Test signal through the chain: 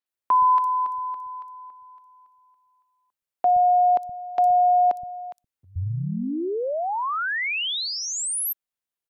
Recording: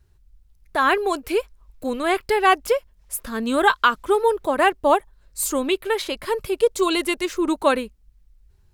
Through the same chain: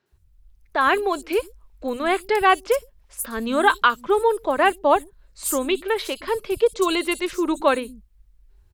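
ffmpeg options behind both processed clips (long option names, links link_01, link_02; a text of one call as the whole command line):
ffmpeg -i in.wav -filter_complex "[0:a]acrossover=split=190|5500[link_01][link_02][link_03];[link_03]adelay=60[link_04];[link_01]adelay=120[link_05];[link_05][link_02][link_04]amix=inputs=3:normalize=0" out.wav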